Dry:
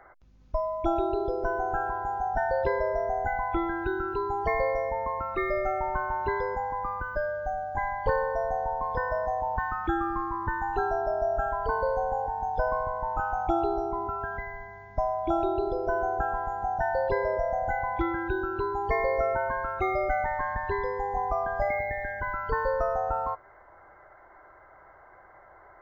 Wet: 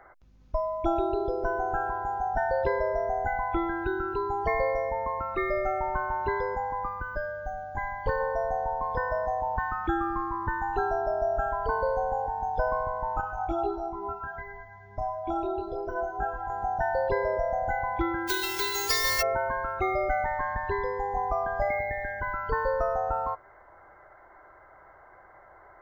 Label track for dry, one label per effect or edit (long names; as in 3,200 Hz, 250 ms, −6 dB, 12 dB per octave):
6.870000	8.200000	dynamic equaliser 700 Hz, up to −5 dB, over −40 dBFS, Q 1.2
13.210000	16.500000	micro pitch shift up and down each way 10 cents
18.270000	19.210000	spectral envelope flattened exponent 0.1